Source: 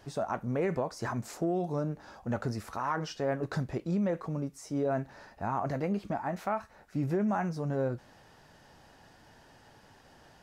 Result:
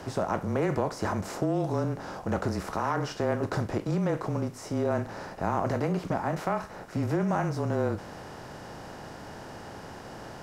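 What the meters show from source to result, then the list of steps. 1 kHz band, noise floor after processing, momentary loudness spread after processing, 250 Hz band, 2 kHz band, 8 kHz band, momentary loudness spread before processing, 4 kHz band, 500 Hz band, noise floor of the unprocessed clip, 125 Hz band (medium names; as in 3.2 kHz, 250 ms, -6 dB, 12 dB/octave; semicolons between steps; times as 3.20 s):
+3.5 dB, -44 dBFS, 15 LU, +2.5 dB, +4.0 dB, +4.5 dB, 6 LU, +5.0 dB, +3.5 dB, -59 dBFS, +4.5 dB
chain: spectral levelling over time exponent 0.6; frequency shift -24 Hz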